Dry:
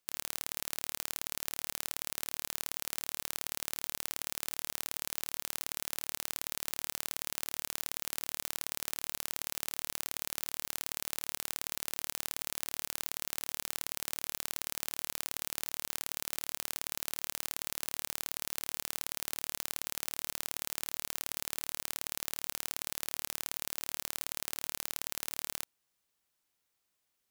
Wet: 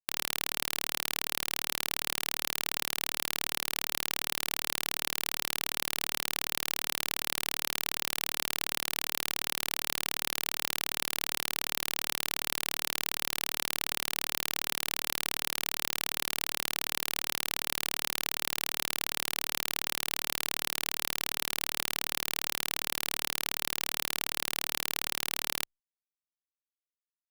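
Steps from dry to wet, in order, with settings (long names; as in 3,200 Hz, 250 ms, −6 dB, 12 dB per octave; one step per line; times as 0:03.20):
guitar amp tone stack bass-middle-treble 10-0-10
fuzz pedal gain 41 dB, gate −47 dBFS
level +2 dB
Opus 96 kbit/s 48,000 Hz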